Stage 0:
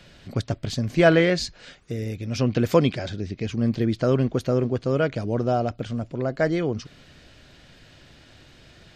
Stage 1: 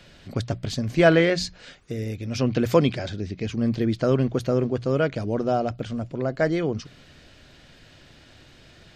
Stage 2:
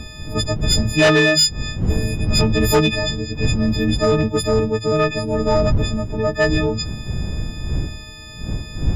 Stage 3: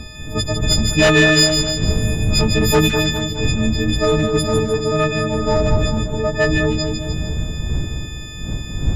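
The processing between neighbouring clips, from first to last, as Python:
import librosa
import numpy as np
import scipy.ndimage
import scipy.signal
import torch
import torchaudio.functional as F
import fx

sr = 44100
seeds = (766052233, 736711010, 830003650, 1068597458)

y1 = fx.hum_notches(x, sr, base_hz=60, count=3)
y2 = fx.freq_snap(y1, sr, grid_st=6)
y2 = fx.dmg_wind(y2, sr, seeds[0], corner_hz=110.0, level_db=-27.0)
y2 = fx.fold_sine(y2, sr, drive_db=6, ceiling_db=-2.5)
y2 = F.gain(torch.from_numpy(y2), -5.5).numpy()
y3 = fx.echo_split(y2, sr, split_hz=1600.0, low_ms=206, high_ms=152, feedback_pct=52, wet_db=-5.5)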